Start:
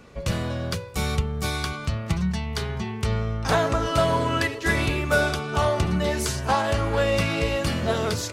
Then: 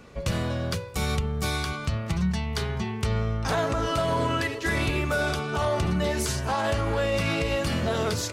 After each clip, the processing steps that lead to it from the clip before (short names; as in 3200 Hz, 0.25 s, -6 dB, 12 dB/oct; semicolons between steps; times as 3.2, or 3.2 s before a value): limiter -16.5 dBFS, peak gain reduction 7 dB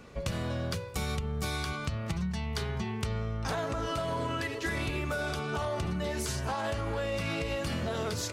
compressor, threshold -27 dBFS, peak gain reduction 6.5 dB; gain -2 dB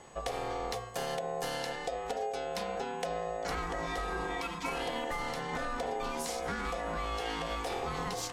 whine 7300 Hz -58 dBFS; ring modulator 610 Hz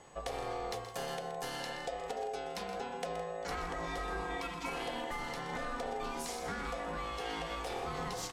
flange 0.47 Hz, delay 6.5 ms, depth 3.5 ms, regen -81%; on a send: tapped delay 0.124/0.163 s -11.5/-14 dB; on the sum: gain +1 dB